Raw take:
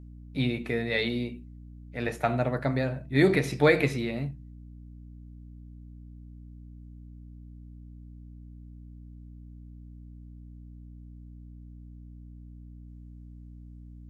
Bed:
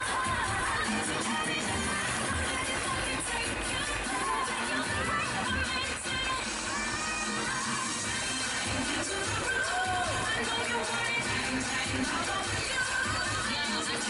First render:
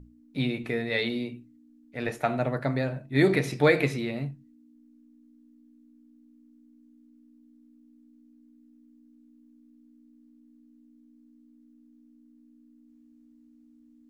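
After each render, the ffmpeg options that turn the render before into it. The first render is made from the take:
-af "bandreject=f=60:t=h:w=6,bandreject=f=120:t=h:w=6,bandreject=f=180:t=h:w=6"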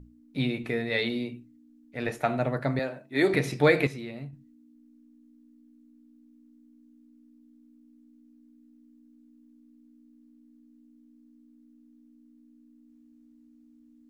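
-filter_complex "[0:a]asettb=1/sr,asplit=3[a][b][c];[a]atrim=end=2.794[d];[b]atrim=start=2.79:end=3.34,asetpts=PTS-STARTPTS,afade=t=in:d=0.004:c=qsin,afade=t=out:st=0.546:d=0.004:c=qsin,highpass=300[e];[c]atrim=start=3.336[f];[d][e]acrossfade=d=0.004:c1=hsin:c2=qsin[g];[g][f]acrossfade=d=0.004:c1=qsin:c2=hsin,asplit=3[h][i][j];[h]atrim=end=3.872[k];[i]atrim=start=3.868:end=4.332,asetpts=PTS-STARTPTS,volume=-7dB[l];[j]atrim=start=4.328[m];[k][l]acrossfade=d=0.004:c1=hsin:c2=hsin[n];[n][m]acrossfade=d=0.004:c1=hsin:c2=hsin"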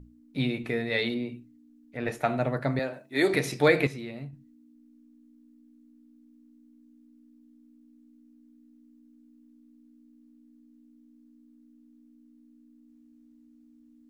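-filter_complex "[0:a]asettb=1/sr,asplit=3[a][b][c];[a]atrim=end=1.144[d];[b]atrim=start=1.14:end=2.07,asetpts=PTS-STARTPTS,afade=t=in:d=0.004:c=qsin,afade=t=out:st=0.926:d=0.004:c=qsin,acrossover=split=2600[e][f];[f]acompressor=threshold=-54dB:ratio=4:attack=1:release=60[g];[e][g]amix=inputs=2:normalize=0[h];[c]atrim=start=2.066[i];[d][h]acrossfade=d=0.004:c1=hsin:c2=qsin[j];[j][i]acrossfade=d=0.004:c1=qsin:c2=hsin,asettb=1/sr,asplit=3[k][l][m];[k]atrim=end=2.934[n];[l]atrim=start=2.93:end=3.68,asetpts=PTS-STARTPTS,afade=t=in:d=0.004:c=qsin,afade=t=out:st=0.746:d=0.004:c=qsin,bass=f=250:g=-4,treble=f=4k:g=5[o];[m]atrim=start=3.676[p];[n][o]acrossfade=d=0.004:c1=hsin:c2=qsin[q];[q][p]acrossfade=d=0.004:c1=qsin:c2=hsin"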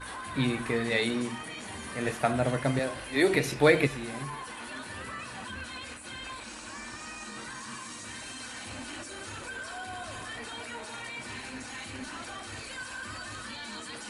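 -filter_complex "[1:a]volume=-9.5dB[a];[0:a][a]amix=inputs=2:normalize=0"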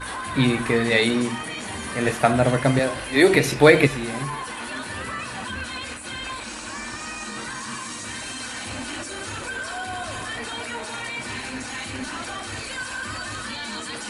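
-af "volume=8.5dB,alimiter=limit=-1dB:level=0:latency=1"

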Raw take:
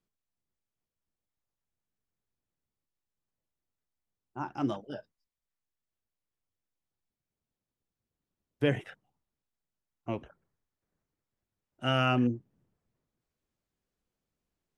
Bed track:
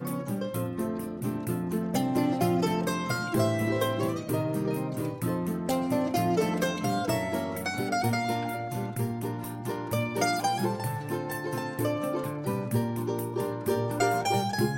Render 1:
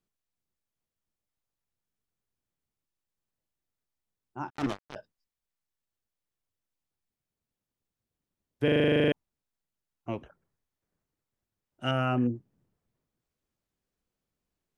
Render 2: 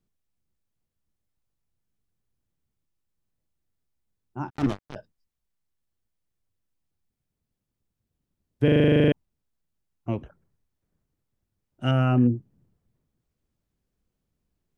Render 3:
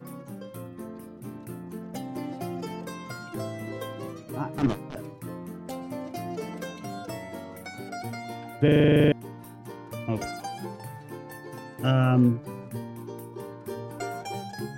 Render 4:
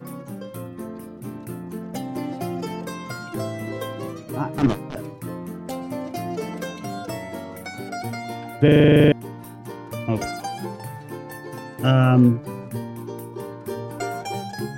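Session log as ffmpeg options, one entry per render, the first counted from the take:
-filter_complex "[0:a]asettb=1/sr,asplit=3[a][b][c];[a]atrim=end=4.504[d];[b]atrim=start=4.5:end=4.96,asetpts=PTS-STARTPTS,afade=t=in:d=0.004:c=qsin,afade=t=out:st=0.456:d=0.004:c=qsin,acrusher=bits=4:mix=0:aa=0.5[e];[c]atrim=start=4.956[f];[d][e]acrossfade=d=0.004:c1=hsin:c2=qsin[g];[g][f]acrossfade=d=0.004:c1=qsin:c2=hsin,asettb=1/sr,asplit=3[h][i][j];[h]atrim=end=11.914[k];[i]atrim=start=11.91:end=12.35,asetpts=PTS-STARTPTS,afade=t=in:d=0.004:c=qsin,afade=t=out:st=0.436:d=0.004:c=qsin,equalizer=f=4.3k:w=0.84:g=-13.5[l];[j]atrim=start=12.346[m];[k][l]acrossfade=d=0.004:c1=hsin:c2=qsin[n];[n][m]acrossfade=d=0.004:c1=qsin:c2=hsin,asplit=13[o][p][q][r][s][t][u][v][w][x][y][z][aa];[o]atrim=end=8.682[ab];[p]atrim=start=8.638:end=8.682[ac];[q]atrim=start=8.638:end=8.682[ad];[r]atrim=start=8.638:end=8.682[ae];[s]atrim=start=8.638:end=8.682[af];[t]atrim=start=8.638:end=8.682[ag];[u]atrim=start=8.638:end=8.682[ah];[v]atrim=start=8.638:end=8.682[ai];[w]atrim=start=8.638:end=8.682[aj];[x]atrim=start=8.638:end=8.682[ak];[y]atrim=start=8.638:end=8.682[al];[z]atrim=start=8.638:end=8.682[am];[aa]atrim=start=9.118[an];[ab][ac]acrossfade=d=0.004:c1=hsin:c2=hsin[ao];[ao][ad]acrossfade=d=0.004:c1=hsin:c2=hsin[ap];[ap][ae]acrossfade=d=0.004:c1=hsin:c2=hsin[aq];[aq][af]acrossfade=d=0.004:c1=hsin:c2=hsin[ar];[ar][ag]acrossfade=d=0.004:c1=hsin:c2=hsin[as];[as][ah]acrossfade=d=0.004:c1=hsin:c2=hsin[at];[at][ai]acrossfade=d=0.004:c1=hsin:c2=hsin[au];[au][aj]acrossfade=d=0.004:c1=hsin:c2=hsin[av];[av][ak]acrossfade=d=0.004:c1=hsin:c2=hsin[aw];[aw][al]acrossfade=d=0.004:c1=hsin:c2=hsin[ax];[ax][am]acrossfade=d=0.004:c1=hsin:c2=hsin[ay];[ay][an]acrossfade=d=0.004:c1=hsin:c2=hsin"
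-af "lowshelf=f=300:g=11.5"
-filter_complex "[1:a]volume=-8.5dB[a];[0:a][a]amix=inputs=2:normalize=0"
-af "volume=5.5dB"

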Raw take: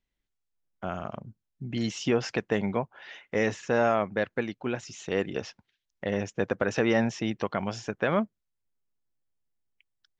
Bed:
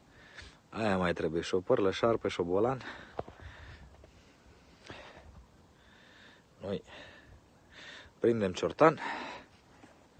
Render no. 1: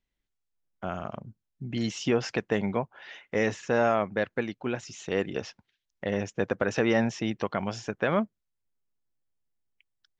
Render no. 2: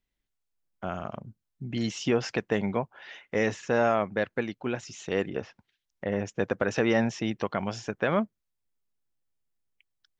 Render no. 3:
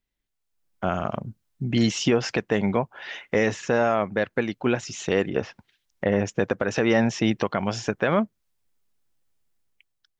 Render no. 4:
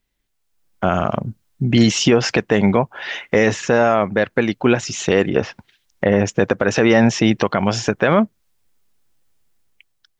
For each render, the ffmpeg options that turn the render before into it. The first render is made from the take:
-af anull
-filter_complex "[0:a]asettb=1/sr,asplit=3[a][b][c];[a]atrim=end=5.274[d];[b]atrim=start=5.27:end=6.27,asetpts=PTS-STARTPTS,afade=t=in:d=0.004:c=qsin,afade=t=out:st=0.996:d=0.004:c=qsin,acrossover=split=2500[e][f];[f]acompressor=threshold=-57dB:ratio=4:attack=1:release=60[g];[e][g]amix=inputs=2:normalize=0[h];[c]atrim=start=6.266[i];[d][h]acrossfade=d=0.004:c1=hsin:c2=qsin[j];[j][i]acrossfade=d=0.004:c1=qsin:c2=hsin"
-af "alimiter=limit=-18.5dB:level=0:latency=1:release=319,dynaudnorm=f=130:g=9:m=9dB"
-af "volume=9dB,alimiter=limit=-3dB:level=0:latency=1"

